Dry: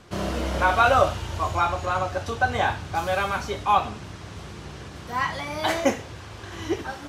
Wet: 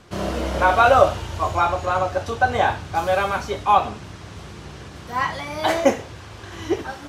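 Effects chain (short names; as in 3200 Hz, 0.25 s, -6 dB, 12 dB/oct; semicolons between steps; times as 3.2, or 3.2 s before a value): dynamic EQ 550 Hz, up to +5 dB, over -31 dBFS, Q 0.79; gain +1 dB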